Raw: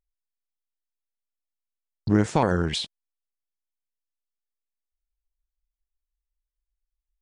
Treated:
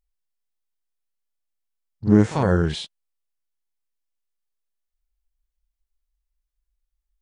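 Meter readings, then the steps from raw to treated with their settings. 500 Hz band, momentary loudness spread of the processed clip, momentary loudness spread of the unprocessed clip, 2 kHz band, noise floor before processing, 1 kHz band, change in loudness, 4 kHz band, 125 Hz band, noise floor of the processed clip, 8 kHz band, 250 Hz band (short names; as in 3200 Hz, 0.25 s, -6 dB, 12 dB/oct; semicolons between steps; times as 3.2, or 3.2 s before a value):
+3.0 dB, 15 LU, 14 LU, +0.5 dB, under -85 dBFS, -1.5 dB, +4.0 dB, -3.0 dB, +5.0 dB, -81 dBFS, -3.0 dB, +5.0 dB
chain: harmonic-percussive split percussive -16 dB; reverse echo 43 ms -11 dB; gain +6.5 dB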